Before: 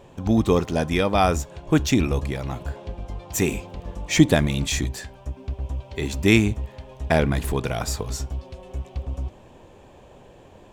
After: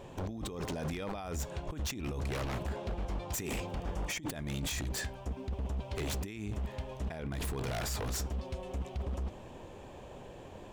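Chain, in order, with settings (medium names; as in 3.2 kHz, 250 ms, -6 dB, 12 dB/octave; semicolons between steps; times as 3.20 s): compressor with a negative ratio -29 dBFS, ratio -1; wavefolder -24.5 dBFS; 3.73–4.36 s: band-stop 4 kHz, Q 13; trim -5.5 dB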